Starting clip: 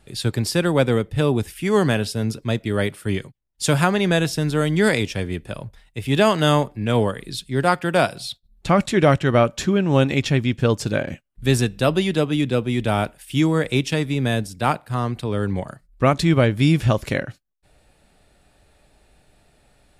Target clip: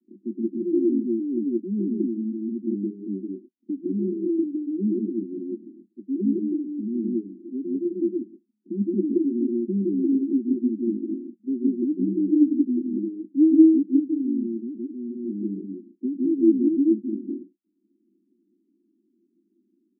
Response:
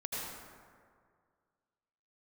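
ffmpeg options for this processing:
-filter_complex "[0:a]asuperpass=centerf=270:order=20:qfactor=1.5,asplit=3[link_01][link_02][link_03];[link_01]afade=type=out:start_time=11.77:duration=0.02[link_04];[link_02]aecho=1:1:6.7:0.98,afade=type=in:start_time=11.77:duration=0.02,afade=type=out:start_time=13.99:duration=0.02[link_05];[link_03]afade=type=in:start_time=13.99:duration=0.02[link_06];[link_04][link_05][link_06]amix=inputs=3:normalize=0[link_07];[1:a]atrim=start_sample=2205,atrim=end_sample=3969,asetrate=22491,aresample=44100[link_08];[link_07][link_08]afir=irnorm=-1:irlink=0,volume=-2dB"

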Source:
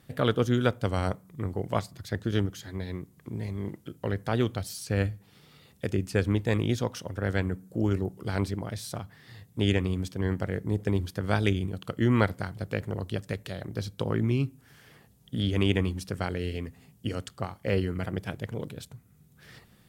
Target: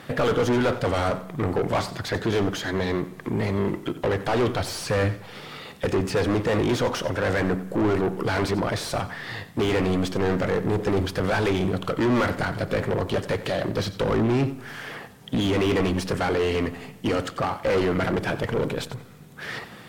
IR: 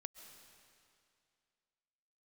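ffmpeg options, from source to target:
-filter_complex "[0:a]asplit=2[link_01][link_02];[link_02]highpass=frequency=720:poles=1,volume=37dB,asoftclip=type=tanh:threshold=-7.5dB[link_03];[link_01][link_03]amix=inputs=2:normalize=0,lowpass=frequency=1500:poles=1,volume=-6dB,asplit=2[link_04][link_05];[1:a]atrim=start_sample=2205,asetrate=88200,aresample=44100,adelay=91[link_06];[link_05][link_06]afir=irnorm=-1:irlink=0,volume=-3.5dB[link_07];[link_04][link_07]amix=inputs=2:normalize=0,volume=-5.5dB" -ar 48000 -c:a aac -b:a 96k

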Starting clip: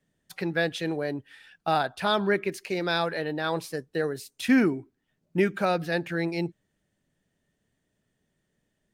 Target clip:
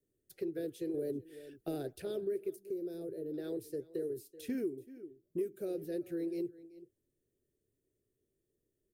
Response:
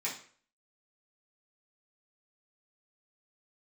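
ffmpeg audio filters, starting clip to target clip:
-filter_complex "[0:a]asettb=1/sr,asplit=3[link_01][link_02][link_03];[link_01]atrim=end=0.944[link_04];[link_02]atrim=start=0.94:end=2.02,asetpts=PTS-STARTPTS,afade=type=in:duration=0.004:curve=qsin,afade=type=out:start_time=1.076:duration=0.004:curve=qsin,acontrast=89[link_05];[link_03]atrim=start=2.016[link_06];[link_04][link_05]acrossfade=duration=0.004:curve1=hsin:curve2=qsin[link_07];[link_07][link_06]acrossfade=duration=0.004:curve1=qsin:curve2=hsin,aecho=1:1:380:0.075,flanger=delay=0.5:depth=8.6:regen=-77:speed=2:shape=triangular,firequalizer=gain_entry='entry(120,0);entry(180,-11);entry(370,10);entry(910,-27);entry(1500,-16);entry(12000,7)':delay=0.05:min_phase=1,acrossover=split=510|7200[link_08][link_09][link_10];[link_08]acompressor=threshold=-34dB:ratio=4[link_11];[link_09]acompressor=threshold=-46dB:ratio=4[link_12];[link_10]acompressor=threshold=-55dB:ratio=4[link_13];[link_11][link_12][link_13]amix=inputs=3:normalize=0,asettb=1/sr,asplit=3[link_14][link_15][link_16];[link_14]atrim=end=2.564[link_17];[link_15]atrim=start=2.56:end=3.34,asetpts=PTS-STARTPTS,afade=type=in:duration=0.004:curve=qsin,afade=type=out:start_time=0.776:duration=0.004:curve=qsin,equalizer=frequency=2600:width=0.39:gain=-13.5[link_18];[link_16]atrim=start=3.336[link_19];[link_17][link_18]acrossfade=duration=0.004:curve1=hsin:curve2=qsin[link_20];[link_20][link_19]acrossfade=duration=0.004:curve1=qsin:curve2=hsin,volume=-2.5dB"

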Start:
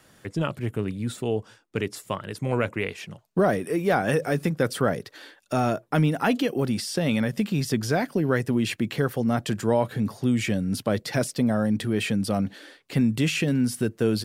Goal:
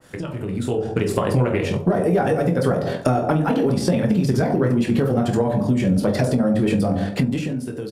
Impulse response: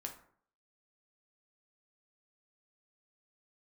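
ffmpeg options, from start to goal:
-filter_complex "[1:a]atrim=start_sample=2205,asetrate=25137,aresample=44100[link_01];[0:a][link_01]afir=irnorm=-1:irlink=0,asplit=2[link_02][link_03];[link_03]asoftclip=type=tanh:threshold=-17.5dB,volume=-9dB[link_04];[link_02][link_04]amix=inputs=2:normalize=0,acompressor=threshold=-30dB:ratio=12,atempo=1.8,dynaudnorm=framelen=120:gausssize=11:maxgain=11dB,asplit=2[link_05][link_06];[link_06]adelay=22,volume=-13.5dB[link_07];[link_05][link_07]amix=inputs=2:normalize=0,bandreject=frequency=74.34:width_type=h:width=4,bandreject=frequency=148.68:width_type=h:width=4,bandreject=frequency=223.02:width_type=h:width=4,bandreject=frequency=297.36:width_type=h:width=4,bandreject=frequency=371.7:width_type=h:width=4,bandreject=frequency=446.04:width_type=h:width=4,bandreject=frequency=520.38:width_type=h:width=4,bandreject=frequency=594.72:width_type=h:width=4,bandreject=frequency=669.06:width_type=h:width=4,bandreject=frequency=743.4:width_type=h:width=4,bandreject=frequency=817.74:width_type=h:width=4,bandreject=frequency=892.08:width_type=h:width=4,bandreject=frequency=966.42:width_type=h:width=4,bandreject=frequency=1040.76:width_type=h:width=4,bandreject=frequency=1115.1:width_type=h:width=4,bandreject=frequency=1189.44:width_type=h:width=4,bandreject=frequency=1263.78:width_type=h:width=4,bandreject=frequency=1338.12:width_type=h:width=4,bandreject=frequency=1412.46:width_type=h:width=4,adynamicequalizer=threshold=0.00708:dfrequency=1500:dqfactor=0.7:tfrequency=1500:tqfactor=0.7:attack=5:release=100:ratio=0.375:range=4:mode=cutabove:tftype=highshelf,volume=4.5dB"

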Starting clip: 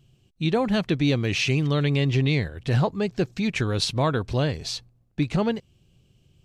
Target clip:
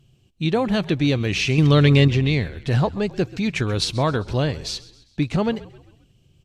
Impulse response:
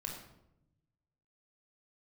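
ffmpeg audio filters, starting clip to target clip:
-filter_complex "[0:a]asettb=1/sr,asplit=3[link_01][link_02][link_03];[link_01]atrim=end=1.584[link_04];[link_02]atrim=start=1.58:end=2.08,asetpts=PTS-STARTPTS,afade=type=in:duration=0.004:curve=qsin,afade=type=out:start_time=0.496:duration=0.004:curve=qsin,acontrast=68[link_05];[link_03]atrim=start=2.076[link_06];[link_04][link_05]acrossfade=duration=0.004:curve1=hsin:curve2=qsin[link_07];[link_07][link_06]acrossfade=duration=0.004:curve1=qsin:curve2=hsin,asplit=5[link_08][link_09][link_10][link_11][link_12];[link_09]adelay=132,afreqshift=-45,volume=-19dB[link_13];[link_10]adelay=264,afreqshift=-90,volume=-25.2dB[link_14];[link_11]adelay=396,afreqshift=-135,volume=-31.4dB[link_15];[link_12]adelay=528,afreqshift=-180,volume=-37.6dB[link_16];[link_08][link_13][link_14][link_15][link_16]amix=inputs=5:normalize=0,volume=2dB" -ar 32000 -c:a libvorbis -b:a 128k

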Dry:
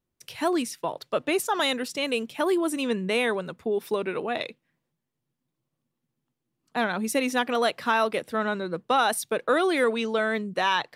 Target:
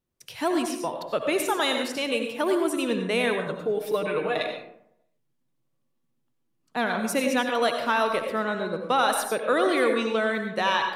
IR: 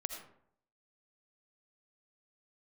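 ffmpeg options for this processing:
-filter_complex "[0:a]asettb=1/sr,asplit=3[link_01][link_02][link_03];[link_01]atrim=end=3.464[link_04];[link_02]atrim=start=3.46:end=4.43,asetpts=PTS-STARTPTS,afade=type=in:duration=0.004:curve=qsin,afade=type=out:start_time=0.966:duration=0.004:curve=qsin,aecho=1:1:6.5:0.83,atrim=end_sample=42777[link_05];[link_03]atrim=start=4.426[link_06];[link_04][link_05]acrossfade=duration=0.004:curve1=hsin:curve2=qsin[link_07];[link_07][link_06]acrossfade=duration=0.004:curve1=qsin:curve2=hsin[link_08];[1:a]atrim=start_sample=2205,asetrate=38808,aresample=44100[link_09];[link_08][link_09]afir=irnorm=-1:irlink=0"

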